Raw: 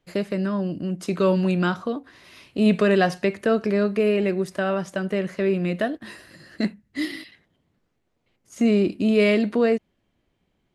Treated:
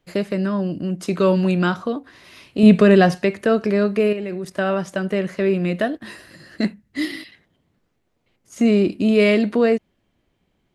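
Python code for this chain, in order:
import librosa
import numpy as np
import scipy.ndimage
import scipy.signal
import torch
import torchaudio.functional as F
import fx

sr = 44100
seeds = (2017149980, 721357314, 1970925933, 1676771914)

y = fx.low_shelf(x, sr, hz=320.0, db=7.5, at=(2.63, 3.15))
y = fx.level_steps(y, sr, step_db=10, at=(4.06, 4.55), fade=0.02)
y = y * 10.0 ** (3.0 / 20.0)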